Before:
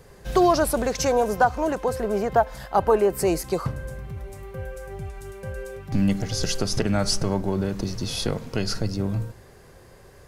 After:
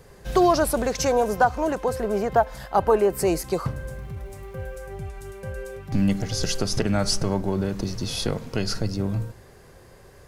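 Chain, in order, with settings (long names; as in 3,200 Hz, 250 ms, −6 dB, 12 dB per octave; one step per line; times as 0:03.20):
0:03.52–0:04.77: surface crackle 500 per second −51 dBFS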